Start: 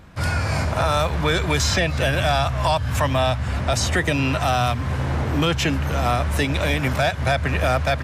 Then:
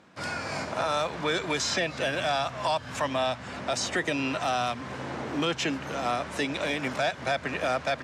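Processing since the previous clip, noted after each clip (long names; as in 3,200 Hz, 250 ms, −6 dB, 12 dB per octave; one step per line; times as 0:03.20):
Chebyshev band-pass filter 260–7,100 Hz, order 2
level −5.5 dB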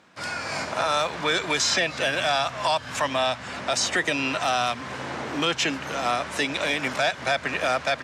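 tilt shelving filter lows −3.5 dB, about 720 Hz
automatic gain control gain up to 3 dB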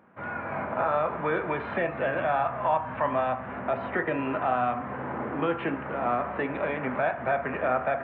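Gaussian smoothing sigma 5 samples
on a send at −5.5 dB: convolution reverb RT60 0.65 s, pre-delay 3 ms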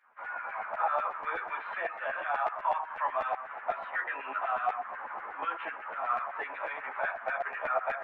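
auto-filter high-pass saw down 8.1 Hz 670–1,900 Hz
string-ensemble chorus
level −4 dB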